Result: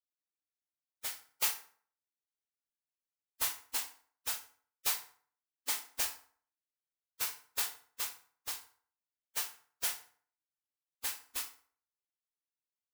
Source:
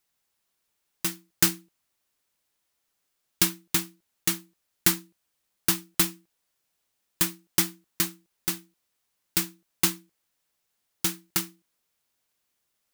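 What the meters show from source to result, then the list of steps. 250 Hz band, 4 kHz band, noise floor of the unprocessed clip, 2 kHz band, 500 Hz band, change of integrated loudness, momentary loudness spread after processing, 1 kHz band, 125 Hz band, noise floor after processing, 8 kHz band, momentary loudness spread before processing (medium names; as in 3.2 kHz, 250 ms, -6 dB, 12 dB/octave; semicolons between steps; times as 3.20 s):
-31.0 dB, -9.5 dB, -78 dBFS, -9.5 dB, -14.5 dB, -10.0 dB, 10 LU, -7.0 dB, under -25 dB, under -85 dBFS, -9.5 dB, 11 LU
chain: spectral gate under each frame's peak -15 dB weak; FDN reverb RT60 0.5 s, low-frequency decay 1×, high-frequency decay 0.7×, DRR 3 dB; trim -5 dB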